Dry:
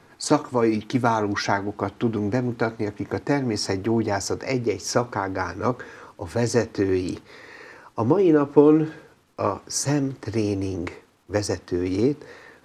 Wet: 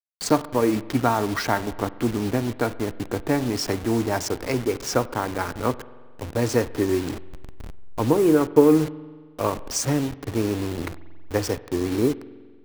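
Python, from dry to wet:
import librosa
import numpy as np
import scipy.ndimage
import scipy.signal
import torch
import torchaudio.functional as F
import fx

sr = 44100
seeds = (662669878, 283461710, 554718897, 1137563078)

y = fx.delta_hold(x, sr, step_db=-28.5)
y = fx.rev_spring(y, sr, rt60_s=1.6, pass_ms=(45,), chirp_ms=75, drr_db=17.0)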